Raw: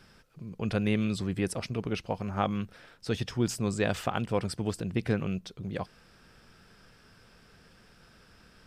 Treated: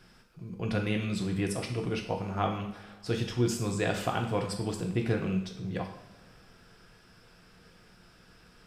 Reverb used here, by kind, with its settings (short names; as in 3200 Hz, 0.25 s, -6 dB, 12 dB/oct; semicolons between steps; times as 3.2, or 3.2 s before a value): two-slope reverb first 0.57 s, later 2.4 s, from -18 dB, DRR 1.5 dB; gain -2 dB